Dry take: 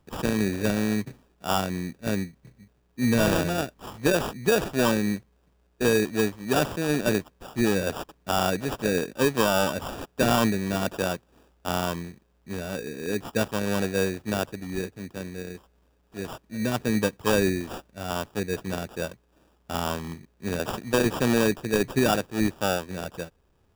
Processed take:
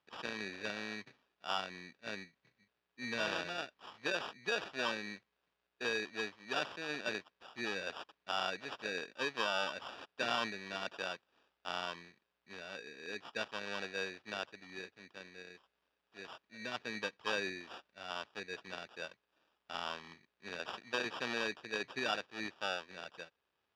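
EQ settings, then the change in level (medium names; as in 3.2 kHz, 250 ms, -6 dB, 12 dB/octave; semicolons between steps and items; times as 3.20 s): band-pass filter 6.2 kHz, Q 0.66; distance through air 270 m; treble shelf 9.1 kHz -4.5 dB; +3.0 dB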